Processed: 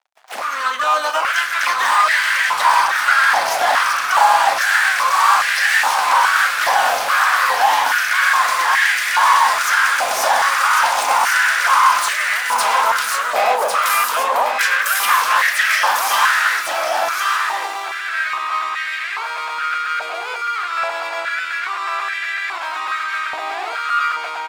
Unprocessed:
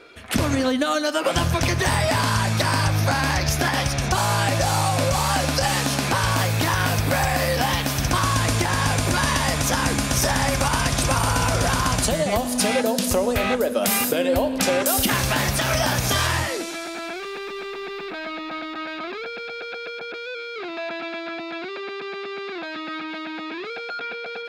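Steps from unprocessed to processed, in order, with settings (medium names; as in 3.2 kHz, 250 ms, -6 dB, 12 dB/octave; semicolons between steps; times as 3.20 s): doubling 36 ms -11 dB; harmony voices -3 st -8 dB, +12 st -8 dB; crossover distortion -38.5 dBFS; peaking EQ 1.5 kHz +5 dB 2.1 oct; saturation -15.5 dBFS, distortion -13 dB; level rider gain up to 10.5 dB; delay 1099 ms -4 dB; step-sequenced high-pass 2.4 Hz 740–1800 Hz; trim -9.5 dB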